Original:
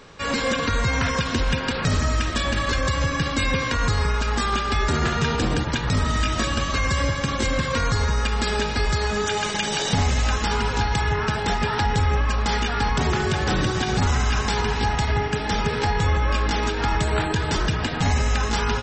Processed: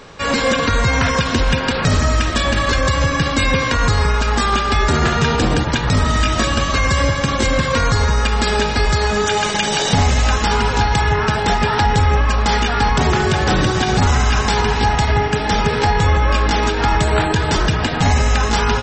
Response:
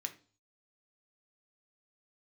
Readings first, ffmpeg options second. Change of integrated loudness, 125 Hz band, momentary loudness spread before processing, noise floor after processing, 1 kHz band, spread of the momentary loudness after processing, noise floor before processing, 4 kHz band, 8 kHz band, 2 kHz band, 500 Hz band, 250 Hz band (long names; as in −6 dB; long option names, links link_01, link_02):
+6.5 dB, +6.0 dB, 2 LU, −20 dBFS, +7.5 dB, 2 LU, −27 dBFS, +6.0 dB, +6.0 dB, +6.0 dB, +7.0 dB, +6.0 dB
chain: -af "equalizer=frequency=700:width=1.5:gain=2.5,volume=6dB"